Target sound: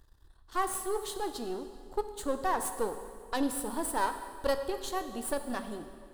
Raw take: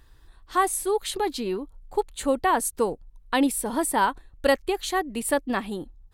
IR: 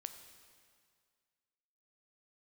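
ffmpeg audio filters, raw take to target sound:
-filter_complex "[0:a]aeval=exprs='if(lt(val(0),0),0.251*val(0),val(0))':channel_layout=same,equalizer=frequency=2300:width=2.5:gain=-10.5[link_01];[1:a]atrim=start_sample=2205[link_02];[link_01][link_02]afir=irnorm=-1:irlink=0"

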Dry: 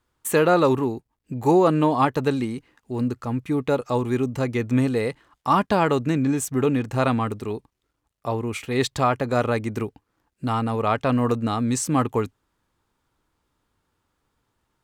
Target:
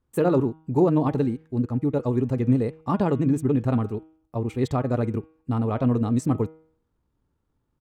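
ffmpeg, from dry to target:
ffmpeg -i in.wav -af "tiltshelf=frequency=660:gain=8,atempo=1.9,bandreject=frequency=158.8:width_type=h:width=4,bandreject=frequency=317.6:width_type=h:width=4,bandreject=frequency=476.4:width_type=h:width=4,bandreject=frequency=635.2:width_type=h:width=4,bandreject=frequency=794:width_type=h:width=4,bandreject=frequency=952.8:width_type=h:width=4,bandreject=frequency=1111.6:width_type=h:width=4,bandreject=frequency=1270.4:width_type=h:width=4,bandreject=frequency=1429.2:width_type=h:width=4,bandreject=frequency=1588:width_type=h:width=4,bandreject=frequency=1746.8:width_type=h:width=4,bandreject=frequency=1905.6:width_type=h:width=4,bandreject=frequency=2064.4:width_type=h:width=4,bandreject=frequency=2223.2:width_type=h:width=4,bandreject=frequency=2382:width_type=h:width=4,bandreject=frequency=2540.8:width_type=h:width=4,bandreject=frequency=2699.6:width_type=h:width=4,bandreject=frequency=2858.4:width_type=h:width=4,bandreject=frequency=3017.2:width_type=h:width=4,bandreject=frequency=3176:width_type=h:width=4,bandreject=frequency=3334.8:width_type=h:width=4,bandreject=frequency=3493.6:width_type=h:width=4,bandreject=frequency=3652.4:width_type=h:width=4,volume=-4.5dB" out.wav

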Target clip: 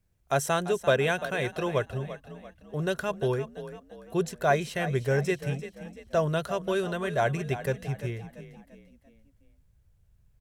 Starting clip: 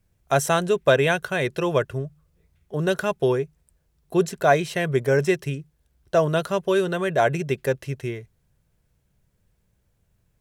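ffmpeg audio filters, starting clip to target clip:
ffmpeg -i in.wav -filter_complex "[0:a]asubboost=boost=4:cutoff=110,asplit=2[link_01][link_02];[link_02]asplit=4[link_03][link_04][link_05][link_06];[link_03]adelay=342,afreqshift=36,volume=-13dB[link_07];[link_04]adelay=684,afreqshift=72,volume=-20.5dB[link_08];[link_05]adelay=1026,afreqshift=108,volume=-28.1dB[link_09];[link_06]adelay=1368,afreqshift=144,volume=-35.6dB[link_10];[link_07][link_08][link_09][link_10]amix=inputs=4:normalize=0[link_11];[link_01][link_11]amix=inputs=2:normalize=0,volume=-5.5dB" out.wav

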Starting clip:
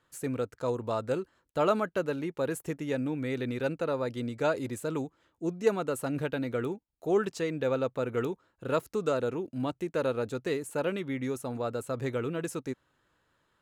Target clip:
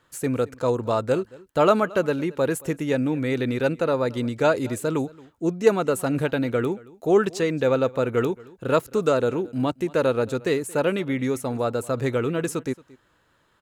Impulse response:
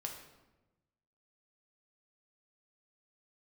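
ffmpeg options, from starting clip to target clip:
-af "aecho=1:1:225:0.075,volume=8dB"

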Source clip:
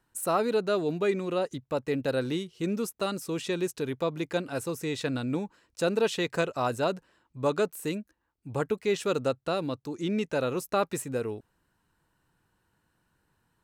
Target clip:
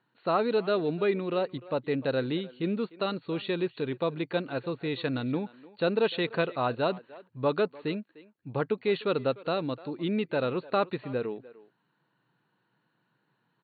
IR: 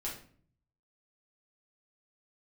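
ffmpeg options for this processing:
-filter_complex "[0:a]asplit=2[link_01][link_02];[link_02]adelay=300,highpass=300,lowpass=3400,asoftclip=type=hard:threshold=-23dB,volume=-18dB[link_03];[link_01][link_03]amix=inputs=2:normalize=0,afftfilt=real='re*between(b*sr/4096,110,4500)':imag='im*between(b*sr/4096,110,4500)':win_size=4096:overlap=0.75"

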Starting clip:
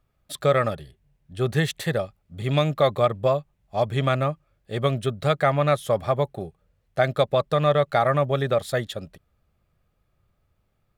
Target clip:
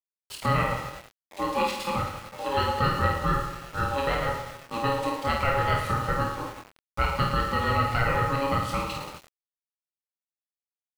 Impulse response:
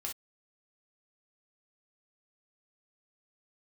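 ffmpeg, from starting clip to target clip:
-filter_complex "[0:a]highshelf=frequency=2700:gain=8,asplit=2[link_01][link_02];[link_02]aecho=0:1:50|110|182|268.4|372.1:0.631|0.398|0.251|0.158|0.1[link_03];[link_01][link_03]amix=inputs=2:normalize=0,aeval=exprs='val(0)*sin(2*PI*690*n/s)':channel_layout=same,asplit=2[link_04][link_05];[link_05]acompressor=threshold=-33dB:ratio=6,volume=-3dB[link_06];[link_04][link_06]amix=inputs=2:normalize=0,aemphasis=mode=reproduction:type=50kf,aeval=exprs='val(0)*gte(abs(val(0)),0.0188)':channel_layout=same,asplit=2[link_07][link_08];[link_08]adelay=25,volume=-5dB[link_09];[link_07][link_09]amix=inputs=2:normalize=0,volume=-5dB"

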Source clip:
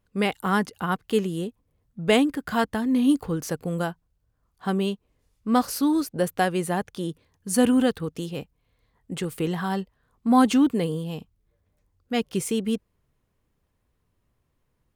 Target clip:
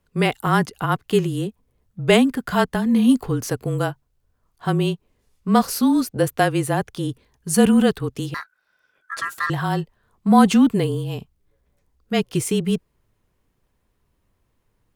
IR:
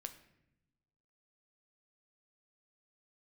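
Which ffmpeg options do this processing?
-filter_complex "[0:a]afreqshift=-28,asettb=1/sr,asplit=3[link_01][link_02][link_03];[link_01]atrim=end=8.344[link_04];[link_02]atrim=start=8.34:end=9.5,asetpts=PTS-STARTPTS,afade=type=in:duration=0.004:curve=qsin,afade=type=out:start_time=1.156:duration=0.004:curve=qsin,aeval=exprs='val(0)*sin(2*PI*1500*n/s)':channel_layout=same[link_05];[link_03]atrim=start=9.496[link_06];[link_04][link_05]acrossfade=duration=0.004:curve1=hsin:curve2=qsin[link_07];[link_07][link_06]acrossfade=duration=0.004:curve1=qsin:curve2=hsin,volume=4.5dB"

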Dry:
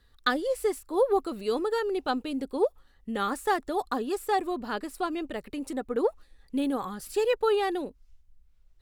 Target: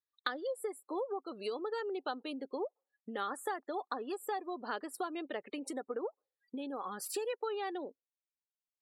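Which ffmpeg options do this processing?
ffmpeg -i in.wav -af "acompressor=threshold=-35dB:ratio=12,highpass=370,afftdn=noise_reduction=35:noise_floor=-53,volume=2.5dB" out.wav

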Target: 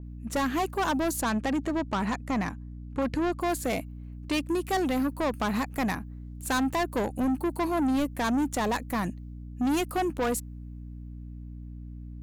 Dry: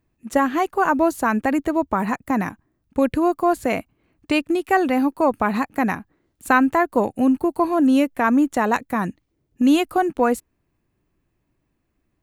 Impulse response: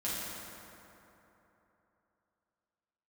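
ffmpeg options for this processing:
-filter_complex "[0:a]asettb=1/sr,asplit=3[link_01][link_02][link_03];[link_01]atrim=end=1.214[link_04];[link_02]atrim=start=1.21:end=3.41,asetpts=PTS-STARTPTS,afade=type=in:duration=0.004:curve=qsin,afade=type=out:start_time=2.196:duration=0.004:curve=qsin,lowpass=6700[link_05];[link_03]atrim=start=3.406[link_06];[link_04][link_05]acrossfade=duration=0.004:curve1=hsin:curve2=qsin[link_07];[link_07][link_06]acrossfade=duration=0.004:curve1=qsin:curve2=hsin,asoftclip=type=tanh:threshold=-20dB,aeval=exprs='val(0)+0.0158*(sin(2*PI*60*n/s)+sin(2*PI*2*60*n/s)/2+sin(2*PI*3*60*n/s)/3+sin(2*PI*4*60*n/s)/4+sin(2*PI*5*60*n/s)/5)':channel_layout=same,adynamicequalizer=threshold=0.00631:dfrequency=4500:dqfactor=0.7:tfrequency=4500:tqfactor=0.7:attack=5:release=100:ratio=0.375:range=3.5:mode=boostabove:tftype=highshelf,volume=-3dB"

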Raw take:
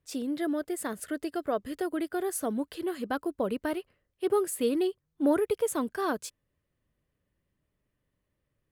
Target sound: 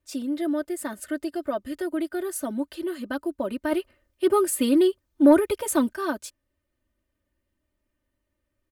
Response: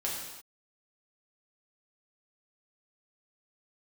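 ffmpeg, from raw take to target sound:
-filter_complex "[0:a]aecho=1:1:3.3:0.98,asplit=3[link_01][link_02][link_03];[link_01]afade=type=out:start_time=3.71:duration=0.02[link_04];[link_02]acontrast=56,afade=type=in:start_time=3.71:duration=0.02,afade=type=out:start_time=5.92:duration=0.02[link_05];[link_03]afade=type=in:start_time=5.92:duration=0.02[link_06];[link_04][link_05][link_06]amix=inputs=3:normalize=0,volume=-1.5dB"

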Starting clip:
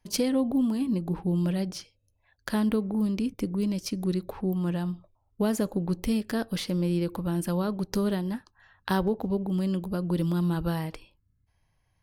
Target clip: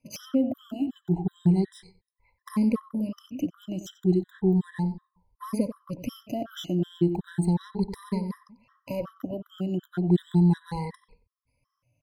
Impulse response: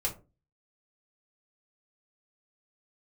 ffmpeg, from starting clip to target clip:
-filter_complex "[0:a]afftfilt=real='re*pow(10,22/40*sin(2*PI*(0.91*log(max(b,1)*sr/1024/100)/log(2)-(0.34)*(pts-256)/sr)))':imag='im*pow(10,22/40*sin(2*PI*(0.91*log(max(b,1)*sr/1024/100)/log(2)-(0.34)*(pts-256)/sr)))':win_size=1024:overlap=0.75,highshelf=frequency=3200:gain=-5.5,asplit=2[link_01][link_02];[link_02]adelay=92,lowpass=frequency=1900:poles=1,volume=-11dB,asplit=2[link_03][link_04];[link_04]adelay=92,lowpass=frequency=1900:poles=1,volume=0.22,asplit=2[link_05][link_06];[link_06]adelay=92,lowpass=frequency=1900:poles=1,volume=0.22[link_07];[link_01][link_03][link_05][link_07]amix=inputs=4:normalize=0,acrossover=split=460[link_08][link_09];[link_09]asoftclip=type=tanh:threshold=-24.5dB[link_10];[link_08][link_10]amix=inputs=2:normalize=0,afftfilt=real='re*gt(sin(2*PI*2.7*pts/sr)*(1-2*mod(floor(b*sr/1024/1000),2)),0)':imag='im*gt(sin(2*PI*2.7*pts/sr)*(1-2*mod(floor(b*sr/1024/1000),2)),0)':win_size=1024:overlap=0.75,volume=-2.5dB"

